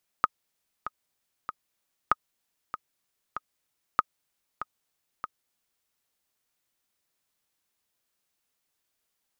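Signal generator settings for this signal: metronome 96 bpm, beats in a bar 3, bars 3, 1.25 kHz, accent 12.5 dB -7 dBFS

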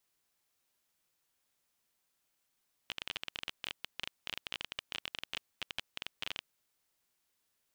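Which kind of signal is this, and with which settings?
random clicks 19 per s -20 dBFS 3.62 s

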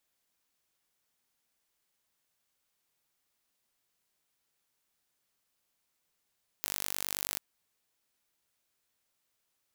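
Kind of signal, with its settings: pulse train 49.2 per s, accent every 0, -7 dBFS 0.74 s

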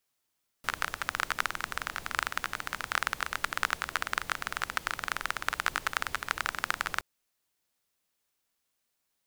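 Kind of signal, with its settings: rain from filtered ticks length 6.37 s, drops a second 21, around 1.4 kHz, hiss -13 dB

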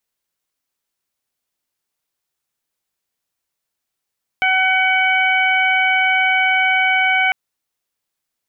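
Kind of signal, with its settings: steady additive tone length 2.90 s, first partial 753 Hz, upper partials 0.5/3.5/-6.5 dB, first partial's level -19 dB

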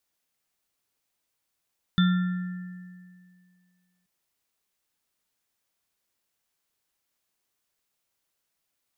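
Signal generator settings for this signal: sine partials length 2.08 s, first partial 181 Hz, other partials 1.38/1.77/3.54 kHz, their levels -12/-18/-9.5 dB, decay 2.13 s, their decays 1.28/2.45/0.54 s, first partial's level -16.5 dB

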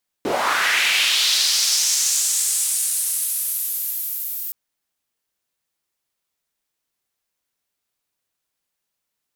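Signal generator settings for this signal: swept filtered noise white, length 4.27 s bandpass, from 290 Hz, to 15 kHz, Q 2.3, linear, gain ramp -16 dB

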